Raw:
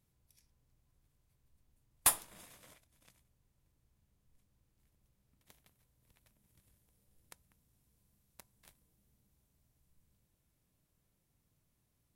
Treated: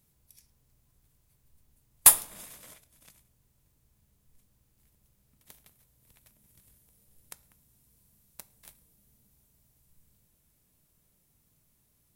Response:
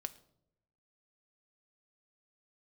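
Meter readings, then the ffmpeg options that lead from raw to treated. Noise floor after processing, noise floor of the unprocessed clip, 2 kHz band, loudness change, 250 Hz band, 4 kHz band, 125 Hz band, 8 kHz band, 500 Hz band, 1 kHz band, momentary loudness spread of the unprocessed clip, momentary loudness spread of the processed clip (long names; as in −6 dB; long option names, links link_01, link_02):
−71 dBFS, −79 dBFS, +6.5 dB, +12.0 dB, +5.5 dB, +8.0 dB, +5.5 dB, +12.0 dB, +6.0 dB, +6.0 dB, 7 LU, 7 LU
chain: -filter_complex "[0:a]crystalizer=i=1:c=0,asplit=2[link_01][link_02];[1:a]atrim=start_sample=2205[link_03];[link_02][link_03]afir=irnorm=-1:irlink=0,volume=9.5dB[link_04];[link_01][link_04]amix=inputs=2:normalize=0,volume=-4.5dB"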